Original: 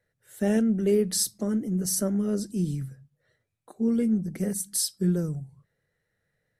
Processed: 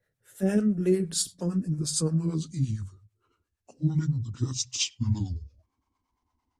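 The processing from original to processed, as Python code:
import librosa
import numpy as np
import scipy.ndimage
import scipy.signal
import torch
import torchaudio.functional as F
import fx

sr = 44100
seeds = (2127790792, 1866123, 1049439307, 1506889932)

y = fx.pitch_glide(x, sr, semitones=-11.5, runs='starting unshifted')
y = fx.harmonic_tremolo(y, sr, hz=8.8, depth_pct=70, crossover_hz=480.0)
y = y * librosa.db_to_amplitude(3.0)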